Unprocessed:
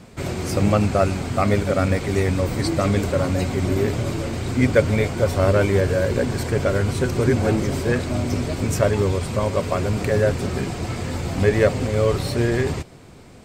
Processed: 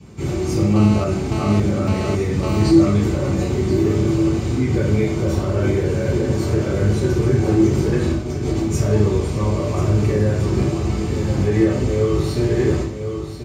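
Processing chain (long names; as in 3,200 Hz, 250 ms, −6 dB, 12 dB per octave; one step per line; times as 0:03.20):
single-tap delay 1,036 ms −10.5 dB
brickwall limiter −12.5 dBFS, peak gain reduction 10.5 dB
0:08.02–0:08.70: compressor whose output falls as the input rises −25 dBFS, ratio −0.5
convolution reverb RT60 0.60 s, pre-delay 3 ms, DRR −9.5 dB
0:00.76–0:02.71: phone interference −12 dBFS
level −16.5 dB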